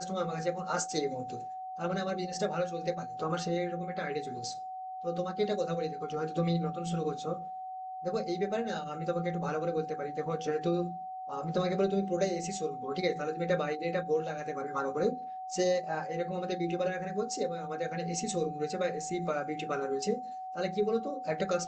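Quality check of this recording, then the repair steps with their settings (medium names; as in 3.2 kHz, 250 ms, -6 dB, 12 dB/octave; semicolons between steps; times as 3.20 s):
whine 750 Hz -38 dBFS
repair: band-stop 750 Hz, Q 30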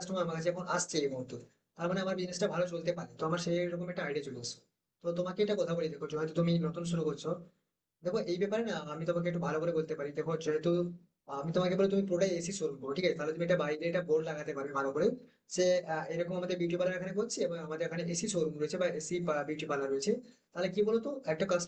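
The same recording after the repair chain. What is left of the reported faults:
nothing left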